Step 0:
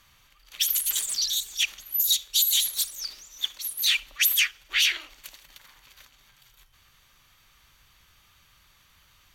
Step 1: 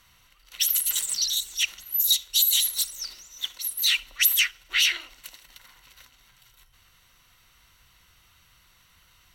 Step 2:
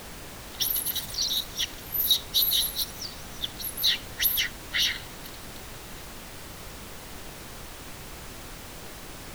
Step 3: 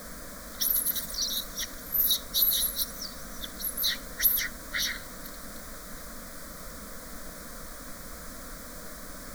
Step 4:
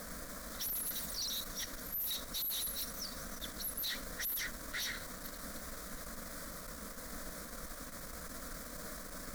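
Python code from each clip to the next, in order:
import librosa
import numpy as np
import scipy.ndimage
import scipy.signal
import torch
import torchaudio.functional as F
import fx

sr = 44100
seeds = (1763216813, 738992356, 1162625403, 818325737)

y1 = fx.ripple_eq(x, sr, per_octave=2.0, db=7)
y2 = fx.fixed_phaser(y1, sr, hz=1700.0, stages=8)
y2 = fx.dmg_noise_colour(y2, sr, seeds[0], colour='pink', level_db=-41.0)
y3 = fx.fixed_phaser(y2, sr, hz=560.0, stages=8)
y3 = y3 * librosa.db_to_amplitude(2.0)
y4 = fx.tube_stage(y3, sr, drive_db=35.0, bias=0.5)
y4 = y4 * librosa.db_to_amplitude(-1.0)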